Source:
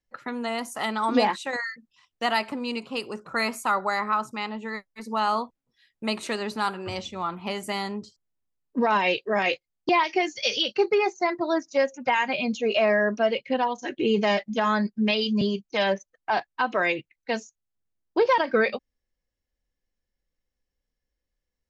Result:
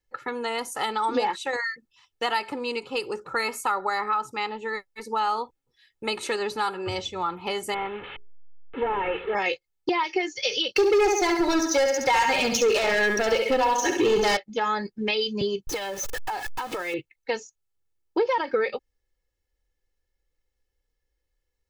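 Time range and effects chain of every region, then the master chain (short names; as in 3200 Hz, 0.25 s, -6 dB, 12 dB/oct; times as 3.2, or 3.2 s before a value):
7.74–9.35 delta modulation 16 kbps, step -33 dBFS + low shelf 380 Hz -6 dB + notches 60/120/180/240/300/360/420 Hz
10.76–14.37 bell 6000 Hz +12.5 dB 0.58 oct + flutter echo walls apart 11.6 m, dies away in 0.56 s + sample leveller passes 3
15.67–16.94 zero-crossing step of -28 dBFS + compressor 10:1, threshold -29 dBFS
whole clip: comb 2.3 ms, depth 63%; compressor 2.5:1, threshold -25 dBFS; gain +1.5 dB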